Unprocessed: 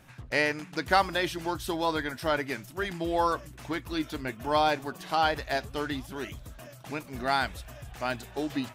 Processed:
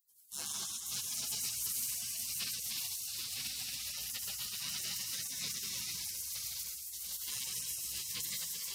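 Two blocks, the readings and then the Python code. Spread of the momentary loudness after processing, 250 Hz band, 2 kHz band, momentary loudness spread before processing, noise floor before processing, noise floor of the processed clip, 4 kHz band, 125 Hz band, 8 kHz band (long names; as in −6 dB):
4 LU, −26.5 dB, −17.5 dB, 13 LU, −49 dBFS, −45 dBFS, −1.5 dB, −17.5 dB, +12.5 dB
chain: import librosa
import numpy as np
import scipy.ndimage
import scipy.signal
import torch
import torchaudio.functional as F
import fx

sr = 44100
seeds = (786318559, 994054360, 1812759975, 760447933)

p1 = fx.reverse_delay(x, sr, ms=153, wet_db=-3.5)
p2 = fx.rev_freeverb(p1, sr, rt60_s=3.1, hf_ratio=0.8, predelay_ms=80, drr_db=-6.0)
p3 = fx.level_steps(p2, sr, step_db=15)
p4 = p2 + F.gain(torch.from_numpy(p3), 0.5).numpy()
p5 = 10.0 ** (-15.0 / 20.0) * np.tanh(p4 / 10.0 ** (-15.0 / 20.0))
p6 = scipy.signal.sosfilt(scipy.signal.butter(2, 320.0, 'highpass', fs=sr, output='sos'), p5)
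p7 = p6 + fx.echo_diffused(p6, sr, ms=590, feedback_pct=53, wet_db=-9.5, dry=0)
p8 = fx.spec_gate(p7, sr, threshold_db=-30, keep='weak')
y = fx.high_shelf(p8, sr, hz=7500.0, db=8.5)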